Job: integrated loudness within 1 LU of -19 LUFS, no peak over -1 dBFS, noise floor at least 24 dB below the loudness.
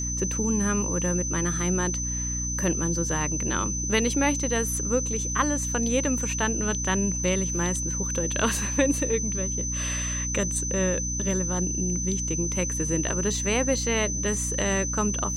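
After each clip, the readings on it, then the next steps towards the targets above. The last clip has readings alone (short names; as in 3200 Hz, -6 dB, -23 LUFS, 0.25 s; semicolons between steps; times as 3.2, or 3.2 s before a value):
hum 60 Hz; harmonics up to 300 Hz; hum level -29 dBFS; steady tone 6100 Hz; tone level -29 dBFS; loudness -25.0 LUFS; peak -9.0 dBFS; loudness target -19.0 LUFS
-> notches 60/120/180/240/300 Hz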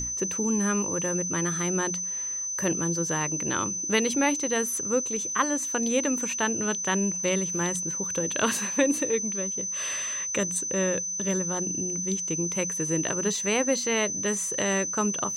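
hum none; steady tone 6100 Hz; tone level -29 dBFS
-> notch 6100 Hz, Q 30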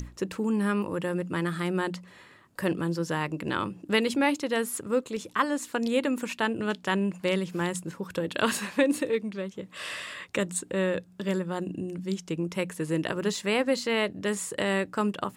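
steady tone none; loudness -29.0 LUFS; peak -10.0 dBFS; loudness target -19.0 LUFS
-> gain +10 dB; limiter -1 dBFS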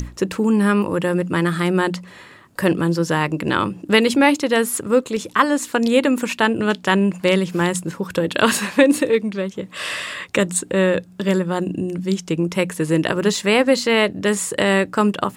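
loudness -19.0 LUFS; peak -1.0 dBFS; noise floor -43 dBFS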